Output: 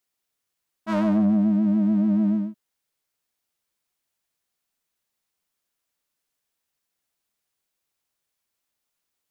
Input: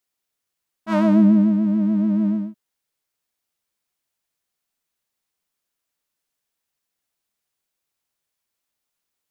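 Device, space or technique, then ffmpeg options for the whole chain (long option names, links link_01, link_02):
soft clipper into limiter: -af "asoftclip=type=tanh:threshold=-12dB,alimiter=limit=-16dB:level=0:latency=1"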